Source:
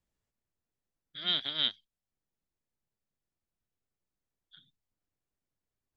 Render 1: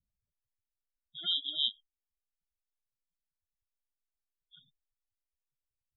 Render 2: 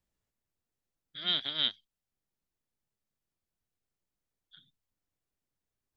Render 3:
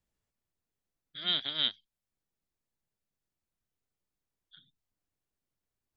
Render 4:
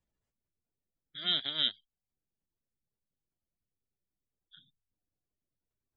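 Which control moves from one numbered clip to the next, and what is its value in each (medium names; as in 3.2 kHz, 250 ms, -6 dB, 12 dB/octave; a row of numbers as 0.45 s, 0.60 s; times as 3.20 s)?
spectral gate, under each frame's peak: -10 dB, -60 dB, -40 dB, -25 dB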